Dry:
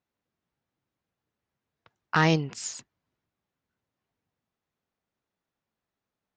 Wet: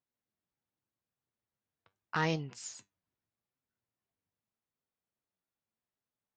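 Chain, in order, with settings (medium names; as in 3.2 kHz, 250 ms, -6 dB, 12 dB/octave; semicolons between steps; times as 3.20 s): flange 0.83 Hz, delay 7.4 ms, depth 3.5 ms, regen +70%; trim -5 dB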